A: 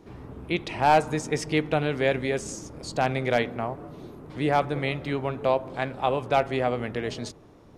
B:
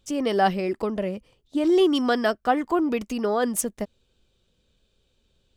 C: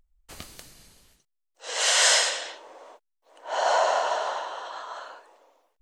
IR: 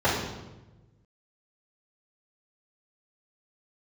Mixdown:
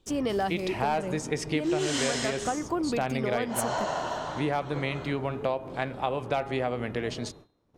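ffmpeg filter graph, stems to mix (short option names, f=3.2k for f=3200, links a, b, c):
-filter_complex "[0:a]agate=range=-20dB:threshold=-48dB:ratio=16:detection=peak,volume=0dB[a];[1:a]alimiter=limit=-14dB:level=0:latency=1:release=457,volume=-1.5dB[b];[2:a]volume=-6dB[c];[a][b][c]amix=inputs=3:normalize=0,bandreject=f=410.5:t=h:w=4,bandreject=f=821:t=h:w=4,bandreject=f=1.2315k:t=h:w=4,bandreject=f=1.642k:t=h:w=4,bandreject=f=2.0525k:t=h:w=4,bandreject=f=2.463k:t=h:w=4,bandreject=f=2.8735k:t=h:w=4,bandreject=f=3.284k:t=h:w=4,bandreject=f=3.6945k:t=h:w=4,bandreject=f=4.105k:t=h:w=4,acompressor=threshold=-24dB:ratio=6"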